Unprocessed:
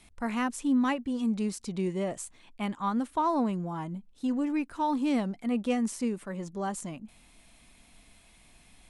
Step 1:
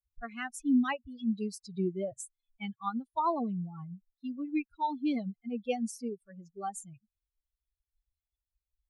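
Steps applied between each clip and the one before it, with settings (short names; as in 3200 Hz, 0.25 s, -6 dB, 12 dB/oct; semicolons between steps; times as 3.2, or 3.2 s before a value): per-bin expansion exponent 3; gain +2 dB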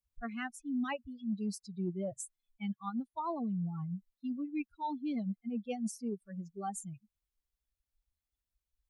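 bell 200 Hz +8 dB 0.87 oct; reverse; compressor 5:1, threshold -34 dBFS, peak gain reduction 15.5 dB; reverse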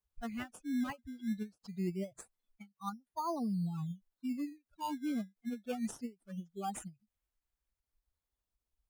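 in parallel at -5 dB: decimation with a swept rate 16×, swing 100% 0.24 Hz; on the sum: ending taper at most 320 dB/s; gain -3.5 dB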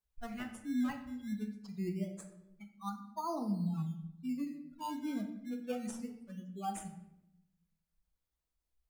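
shoebox room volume 260 m³, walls mixed, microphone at 0.64 m; gain -2 dB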